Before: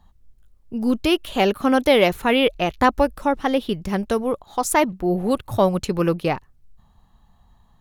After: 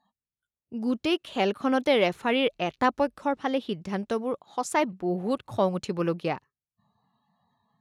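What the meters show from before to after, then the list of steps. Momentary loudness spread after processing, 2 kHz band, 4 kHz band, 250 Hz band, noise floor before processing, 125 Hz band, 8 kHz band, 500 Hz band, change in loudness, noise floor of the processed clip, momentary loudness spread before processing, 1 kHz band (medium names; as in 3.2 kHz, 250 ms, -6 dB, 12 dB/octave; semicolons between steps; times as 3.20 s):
9 LU, -6.5 dB, -6.5 dB, -7.0 dB, -57 dBFS, -8.0 dB, -10.5 dB, -6.5 dB, -6.5 dB, under -85 dBFS, 8 LU, -6.5 dB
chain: band-pass 130–7500 Hz; spectral noise reduction 21 dB; trim -6.5 dB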